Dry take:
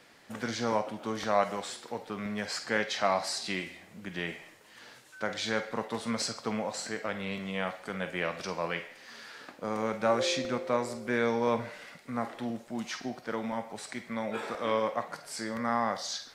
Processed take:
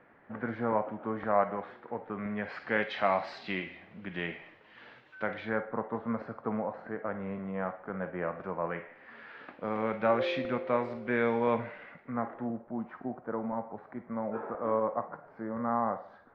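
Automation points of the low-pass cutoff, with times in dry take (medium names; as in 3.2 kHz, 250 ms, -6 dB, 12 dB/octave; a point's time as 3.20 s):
low-pass 24 dB/octave
2.06 s 1.8 kHz
2.84 s 3 kHz
5.22 s 3 kHz
5.65 s 1.5 kHz
8.56 s 1.5 kHz
9.52 s 2.9 kHz
11.55 s 2.9 kHz
12.64 s 1.3 kHz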